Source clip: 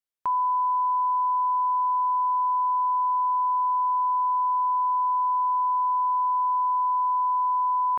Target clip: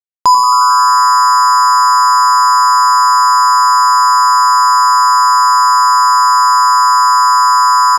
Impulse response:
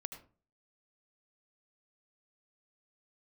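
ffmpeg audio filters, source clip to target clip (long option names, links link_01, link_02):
-filter_complex "[0:a]lowpass=frequency=1000:poles=1,acrusher=bits=4:mix=0:aa=0.5,asplit=9[link_01][link_02][link_03][link_04][link_05][link_06][link_07][link_08][link_09];[link_02]adelay=89,afreqshift=120,volume=-10dB[link_10];[link_03]adelay=178,afreqshift=240,volume=-13.9dB[link_11];[link_04]adelay=267,afreqshift=360,volume=-17.8dB[link_12];[link_05]adelay=356,afreqshift=480,volume=-21.6dB[link_13];[link_06]adelay=445,afreqshift=600,volume=-25.5dB[link_14];[link_07]adelay=534,afreqshift=720,volume=-29.4dB[link_15];[link_08]adelay=623,afreqshift=840,volume=-33.3dB[link_16];[link_09]adelay=712,afreqshift=960,volume=-37.1dB[link_17];[link_01][link_10][link_11][link_12][link_13][link_14][link_15][link_16][link_17]amix=inputs=9:normalize=0,asplit=2[link_18][link_19];[1:a]atrim=start_sample=2205,afade=type=out:start_time=0.17:duration=0.01,atrim=end_sample=7938,asetrate=28665,aresample=44100[link_20];[link_19][link_20]afir=irnorm=-1:irlink=0,volume=8.5dB[link_21];[link_18][link_21]amix=inputs=2:normalize=0,alimiter=level_in=14.5dB:limit=-1dB:release=50:level=0:latency=1,volume=-2.5dB"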